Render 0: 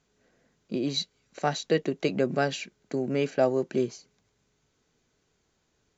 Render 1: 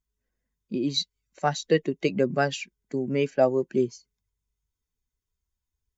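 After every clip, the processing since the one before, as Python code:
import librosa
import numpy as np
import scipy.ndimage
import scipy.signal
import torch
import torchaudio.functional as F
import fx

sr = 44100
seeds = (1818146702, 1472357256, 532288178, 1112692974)

y = fx.bin_expand(x, sr, power=1.5)
y = y * 10.0 ** (4.0 / 20.0)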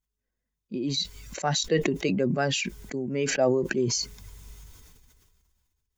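y = fx.sustainer(x, sr, db_per_s=27.0)
y = y * 10.0 ** (-3.5 / 20.0)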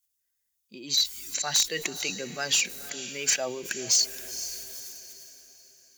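y = librosa.effects.preemphasis(x, coef=0.97, zi=[0.0])
y = fx.echo_diffused(y, sr, ms=486, feedback_pct=42, wet_db=-14.5)
y = fx.fold_sine(y, sr, drive_db=8, ceiling_db=-16.5)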